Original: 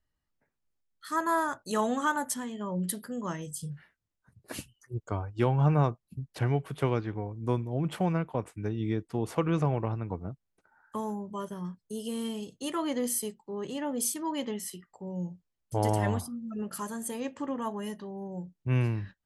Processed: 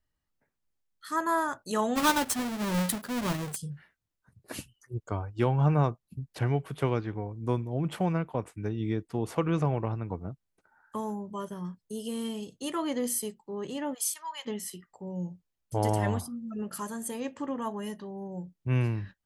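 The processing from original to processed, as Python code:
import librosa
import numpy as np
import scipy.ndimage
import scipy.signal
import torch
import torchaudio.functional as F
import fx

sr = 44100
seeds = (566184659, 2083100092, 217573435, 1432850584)

y = fx.halfwave_hold(x, sr, at=(1.95, 3.55), fade=0.02)
y = fx.highpass(y, sr, hz=890.0, slope=24, at=(13.93, 14.45), fade=0.02)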